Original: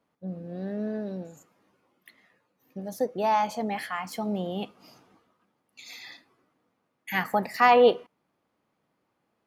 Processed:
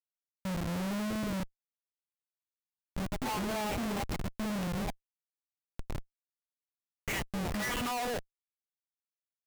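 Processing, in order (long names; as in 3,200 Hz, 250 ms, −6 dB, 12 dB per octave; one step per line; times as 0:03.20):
three-band delay without the direct sound highs, lows, mids 210/260 ms, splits 350/1,100 Hz
all-pass phaser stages 12, 0.58 Hz, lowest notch 360–1,600 Hz
comparator with hysteresis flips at −37.5 dBFS
level +3 dB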